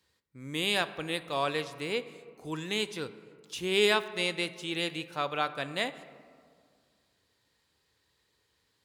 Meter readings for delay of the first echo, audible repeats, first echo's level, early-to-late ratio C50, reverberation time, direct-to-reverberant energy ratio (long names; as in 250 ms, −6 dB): no echo audible, no echo audible, no echo audible, 14.0 dB, 2.0 s, 12.0 dB